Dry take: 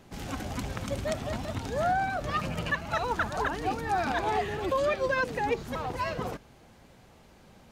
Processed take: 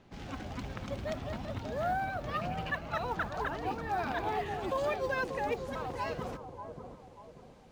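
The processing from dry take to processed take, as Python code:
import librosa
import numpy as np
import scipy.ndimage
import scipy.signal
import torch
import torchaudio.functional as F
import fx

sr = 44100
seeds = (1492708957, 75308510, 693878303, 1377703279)

y = fx.lowpass(x, sr, hz=fx.steps((0.0, 4800.0), (4.46, 10000.0)), slope=12)
y = fx.mod_noise(y, sr, seeds[0], snr_db=33)
y = fx.echo_bbd(y, sr, ms=588, stages=4096, feedback_pct=41, wet_db=-7.5)
y = F.gain(torch.from_numpy(y), -5.5).numpy()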